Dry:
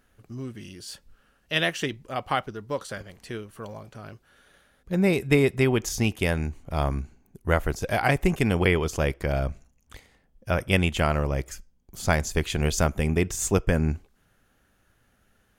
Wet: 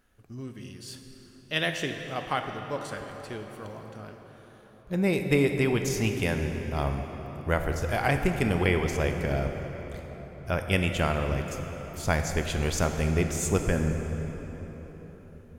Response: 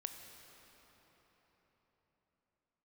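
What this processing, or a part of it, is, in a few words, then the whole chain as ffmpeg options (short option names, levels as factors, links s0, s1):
cathedral: -filter_complex "[1:a]atrim=start_sample=2205[s0];[0:a][s0]afir=irnorm=-1:irlink=0"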